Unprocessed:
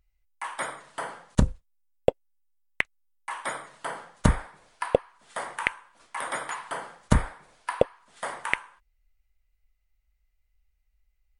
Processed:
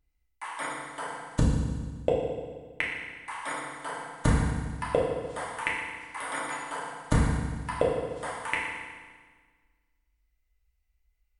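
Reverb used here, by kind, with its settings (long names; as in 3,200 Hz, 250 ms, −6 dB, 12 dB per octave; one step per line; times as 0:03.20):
feedback delay network reverb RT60 1.5 s, low-frequency decay 1.25×, high-frequency decay 0.95×, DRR −4.5 dB
level −6.5 dB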